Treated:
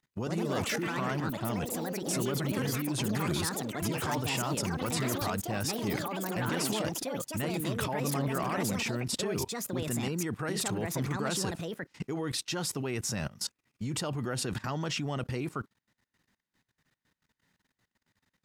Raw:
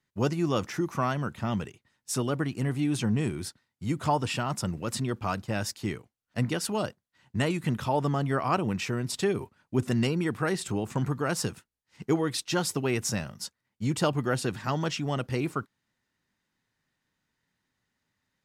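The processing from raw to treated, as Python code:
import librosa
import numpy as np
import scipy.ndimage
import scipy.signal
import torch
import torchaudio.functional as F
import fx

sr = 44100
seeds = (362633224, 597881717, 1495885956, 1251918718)

y = fx.level_steps(x, sr, step_db=20)
y = fx.echo_pitch(y, sr, ms=139, semitones=5, count=3, db_per_echo=-3.0)
y = F.gain(torch.from_numpy(y), 7.0).numpy()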